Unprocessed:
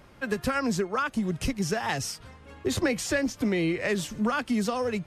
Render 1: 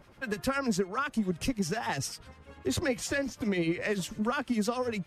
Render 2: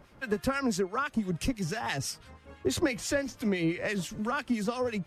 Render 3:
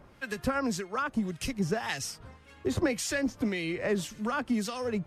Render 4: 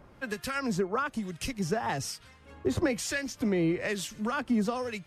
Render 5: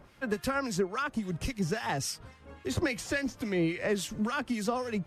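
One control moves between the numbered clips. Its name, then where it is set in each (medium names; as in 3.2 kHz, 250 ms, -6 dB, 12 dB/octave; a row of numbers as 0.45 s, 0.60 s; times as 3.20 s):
harmonic tremolo, rate: 10 Hz, 6 Hz, 1.8 Hz, 1.1 Hz, 3.6 Hz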